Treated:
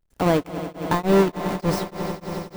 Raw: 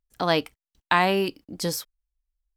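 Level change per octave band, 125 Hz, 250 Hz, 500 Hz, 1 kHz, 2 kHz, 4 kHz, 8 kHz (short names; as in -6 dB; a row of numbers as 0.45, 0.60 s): +8.5, +7.5, +5.5, -0.5, -4.5, -5.5, -2.0 dB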